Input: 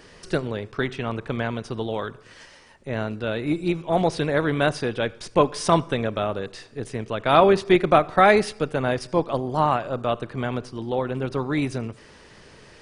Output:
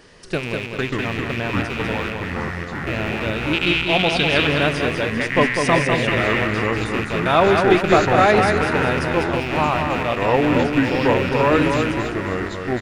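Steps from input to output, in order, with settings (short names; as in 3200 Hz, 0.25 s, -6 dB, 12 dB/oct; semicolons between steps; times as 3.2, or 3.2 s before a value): rattling part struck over -37 dBFS, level -18 dBFS; 3.53–4.47 bell 3200 Hz +14.5 dB 0.95 oct; feedback echo 0.198 s, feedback 43%, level -5 dB; echoes that change speed 0.48 s, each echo -5 st, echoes 2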